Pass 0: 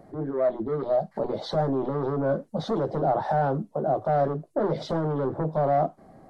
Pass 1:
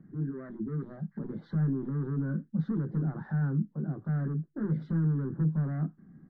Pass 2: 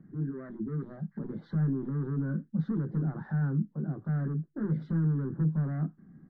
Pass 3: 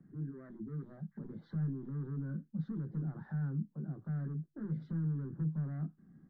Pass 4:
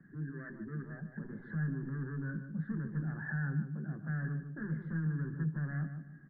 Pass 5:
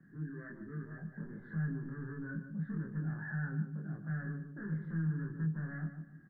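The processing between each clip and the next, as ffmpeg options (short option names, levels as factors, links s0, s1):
-af "firequalizer=gain_entry='entry(100,0);entry(160,12);entry(630,-24);entry(1000,-12);entry(1600,2);entry(2400,-15);entry(6100,-27)':delay=0.05:min_phase=1,volume=0.447"
-af anull
-filter_complex "[0:a]acrossover=split=200|3000[s0][s1][s2];[s1]acompressor=threshold=0.00355:ratio=1.5[s3];[s0][s3][s2]amix=inputs=3:normalize=0,volume=0.501"
-filter_complex "[0:a]lowpass=f=1700:t=q:w=13,asplit=2[s0][s1];[s1]adelay=149,lowpass=f=1200:p=1,volume=0.447,asplit=2[s2][s3];[s3]adelay=149,lowpass=f=1200:p=1,volume=0.34,asplit=2[s4][s5];[s5]adelay=149,lowpass=f=1200:p=1,volume=0.34,asplit=2[s6][s7];[s7]adelay=149,lowpass=f=1200:p=1,volume=0.34[s8];[s0][s2][s4][s6][s8]amix=inputs=5:normalize=0"
-filter_complex "[0:a]asplit=2[s0][s1];[s1]adelay=25,volume=0.794[s2];[s0][s2]amix=inputs=2:normalize=0,volume=0.631"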